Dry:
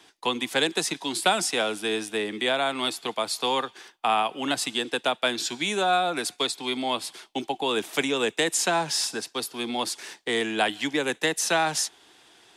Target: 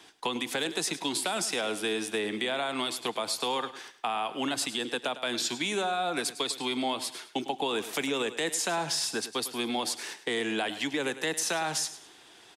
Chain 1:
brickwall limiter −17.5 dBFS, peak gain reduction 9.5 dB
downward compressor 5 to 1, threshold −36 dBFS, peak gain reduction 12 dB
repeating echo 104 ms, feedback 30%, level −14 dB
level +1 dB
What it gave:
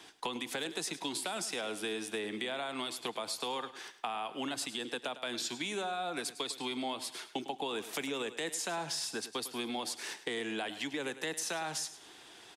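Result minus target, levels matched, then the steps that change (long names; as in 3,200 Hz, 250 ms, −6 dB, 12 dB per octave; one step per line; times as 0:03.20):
downward compressor: peak gain reduction +7 dB
change: downward compressor 5 to 1, threshold −27.5 dBFS, peak gain reduction 5.5 dB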